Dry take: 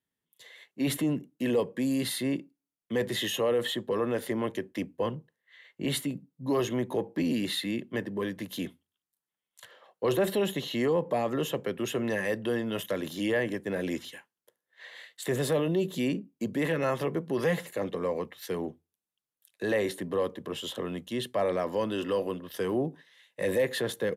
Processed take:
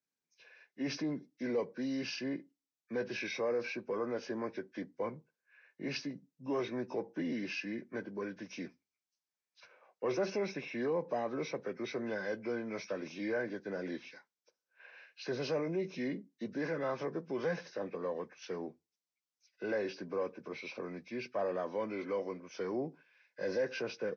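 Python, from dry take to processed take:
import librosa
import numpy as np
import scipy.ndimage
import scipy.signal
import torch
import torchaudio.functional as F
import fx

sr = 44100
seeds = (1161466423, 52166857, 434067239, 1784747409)

y = fx.freq_compress(x, sr, knee_hz=1200.0, ratio=1.5)
y = scipy.signal.sosfilt(scipy.signal.bessel(2, 200.0, 'highpass', norm='mag', fs=sr, output='sos'), y)
y = y * 10.0 ** (-6.5 / 20.0)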